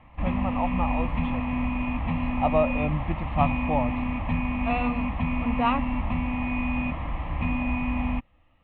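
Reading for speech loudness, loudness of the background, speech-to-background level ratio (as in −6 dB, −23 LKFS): −29.5 LKFS, −28.5 LKFS, −1.0 dB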